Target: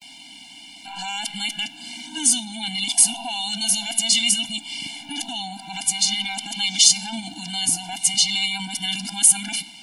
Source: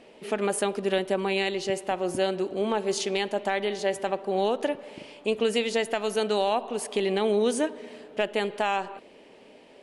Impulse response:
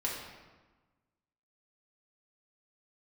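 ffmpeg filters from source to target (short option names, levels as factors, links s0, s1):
-filter_complex "[0:a]areverse,alimiter=limit=0.0631:level=0:latency=1:release=19,aexciter=amount=9.1:drive=4.1:freq=2200,asplit=2[s0][s1];[1:a]atrim=start_sample=2205[s2];[s1][s2]afir=irnorm=-1:irlink=0,volume=0.141[s3];[s0][s3]amix=inputs=2:normalize=0,afftfilt=real='re*eq(mod(floor(b*sr/1024/340),2),0)':imag='im*eq(mod(floor(b*sr/1024/340),2),0)':win_size=1024:overlap=0.75,volume=1.41"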